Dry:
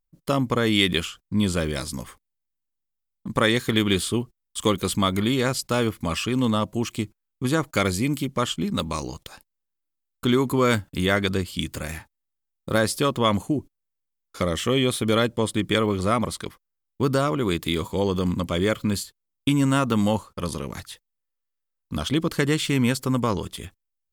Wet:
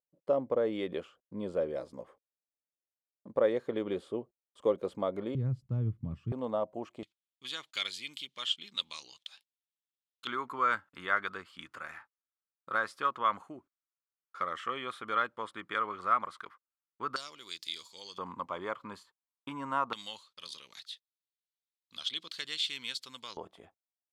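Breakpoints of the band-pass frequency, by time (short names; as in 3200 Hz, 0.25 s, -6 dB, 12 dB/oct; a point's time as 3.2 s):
band-pass, Q 3.4
550 Hz
from 5.35 s 120 Hz
from 6.32 s 630 Hz
from 7.03 s 3400 Hz
from 10.27 s 1300 Hz
from 17.16 s 4800 Hz
from 18.18 s 1000 Hz
from 19.93 s 3800 Hz
from 23.37 s 720 Hz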